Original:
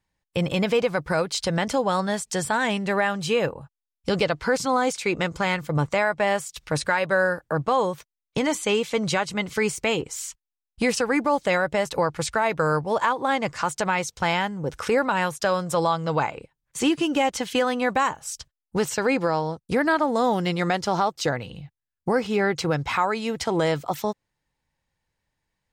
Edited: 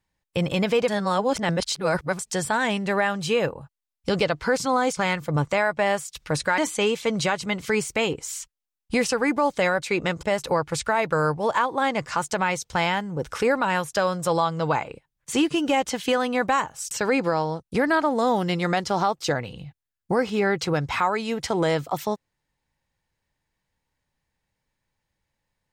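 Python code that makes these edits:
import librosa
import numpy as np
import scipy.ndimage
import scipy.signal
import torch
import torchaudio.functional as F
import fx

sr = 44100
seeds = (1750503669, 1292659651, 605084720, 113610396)

y = fx.edit(x, sr, fx.reverse_span(start_s=0.88, length_s=1.31),
    fx.move(start_s=4.97, length_s=0.41, to_s=11.7),
    fx.cut(start_s=6.99, length_s=1.47),
    fx.cut(start_s=18.38, length_s=0.5), tone=tone)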